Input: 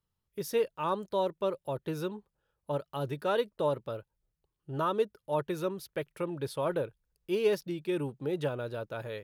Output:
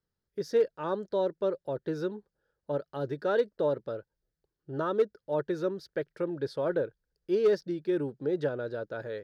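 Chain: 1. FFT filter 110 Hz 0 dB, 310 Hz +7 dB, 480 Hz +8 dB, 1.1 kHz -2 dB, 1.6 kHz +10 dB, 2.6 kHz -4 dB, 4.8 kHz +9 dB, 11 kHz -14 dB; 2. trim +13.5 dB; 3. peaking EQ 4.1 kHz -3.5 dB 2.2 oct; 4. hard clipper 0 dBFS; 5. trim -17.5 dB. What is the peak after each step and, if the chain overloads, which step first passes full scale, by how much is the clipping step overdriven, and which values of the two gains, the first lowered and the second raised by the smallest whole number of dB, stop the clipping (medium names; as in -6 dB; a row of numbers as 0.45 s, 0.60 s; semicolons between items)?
-9.0 dBFS, +4.5 dBFS, +4.0 dBFS, 0.0 dBFS, -17.5 dBFS; step 2, 4.0 dB; step 2 +9.5 dB, step 5 -13.5 dB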